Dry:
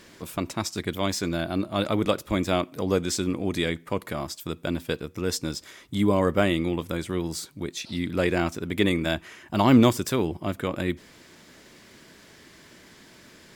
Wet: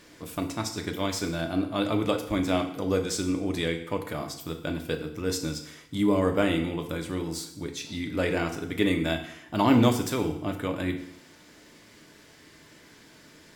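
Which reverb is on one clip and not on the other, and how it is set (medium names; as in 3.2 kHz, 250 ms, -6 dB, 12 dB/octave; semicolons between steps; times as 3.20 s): FDN reverb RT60 0.74 s, low-frequency decay 0.95×, high-frequency decay 0.95×, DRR 4 dB; trim -3.5 dB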